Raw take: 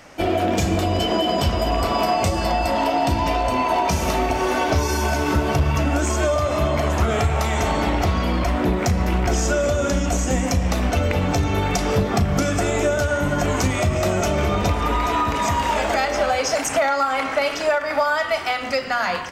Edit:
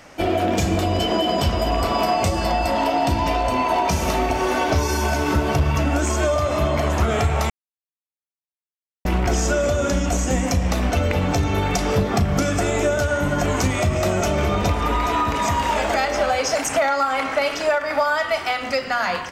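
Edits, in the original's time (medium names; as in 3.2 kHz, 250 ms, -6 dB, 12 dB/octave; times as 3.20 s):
7.50–9.05 s: mute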